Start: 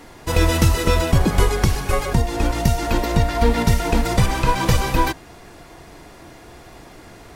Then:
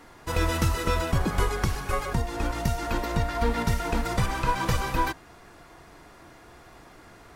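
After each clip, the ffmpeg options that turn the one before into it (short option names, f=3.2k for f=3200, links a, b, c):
-af "equalizer=f=1.3k:t=o:w=1:g=6,volume=-9dB"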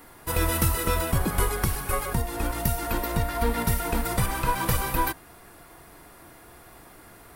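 -af "aexciter=amount=6.3:drive=2.8:freq=8.9k"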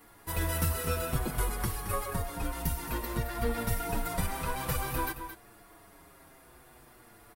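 -filter_complex "[0:a]asplit=2[a][b];[b]aecho=0:1:220:0.299[c];[a][c]amix=inputs=2:normalize=0,asplit=2[d][e];[e]adelay=6.6,afreqshift=-0.54[f];[d][f]amix=inputs=2:normalize=1,volume=-4dB"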